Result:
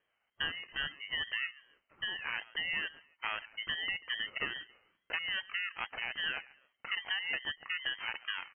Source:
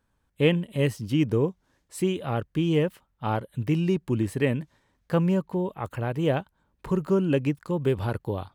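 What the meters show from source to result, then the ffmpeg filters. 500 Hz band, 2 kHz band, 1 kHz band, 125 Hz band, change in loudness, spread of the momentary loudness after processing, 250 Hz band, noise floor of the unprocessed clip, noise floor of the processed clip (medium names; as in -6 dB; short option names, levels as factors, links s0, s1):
-28.5 dB, +4.0 dB, -10.5 dB, -35.0 dB, -9.5 dB, 6 LU, -33.0 dB, -72 dBFS, -81 dBFS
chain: -filter_complex "[0:a]aemphasis=mode=production:type=bsi,acompressor=threshold=0.0316:ratio=6,crystalizer=i=2:c=0,asplit=2[s0][s1];[s1]aecho=0:1:139|278:0.0891|0.0267[s2];[s0][s2]amix=inputs=2:normalize=0,lowpass=f=2300:t=q:w=0.5098,lowpass=f=2300:t=q:w=0.6013,lowpass=f=2300:t=q:w=0.9,lowpass=f=2300:t=q:w=2.563,afreqshift=-2700,aeval=exprs='val(0)*sin(2*PI*500*n/s+500*0.3/2.4*sin(2*PI*2.4*n/s))':c=same"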